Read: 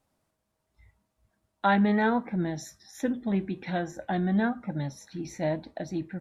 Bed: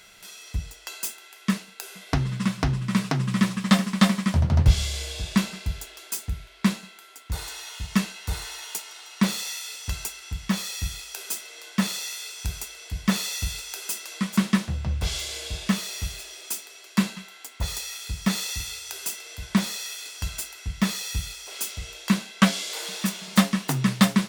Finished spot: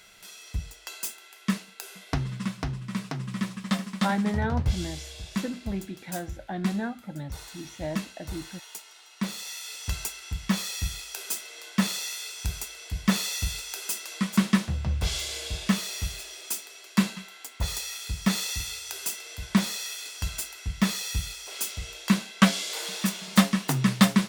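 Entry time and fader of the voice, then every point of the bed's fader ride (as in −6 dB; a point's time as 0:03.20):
2.40 s, −5.0 dB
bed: 0:01.90 −2.5 dB
0:02.84 −8.5 dB
0:09.25 −8.5 dB
0:09.83 −0.5 dB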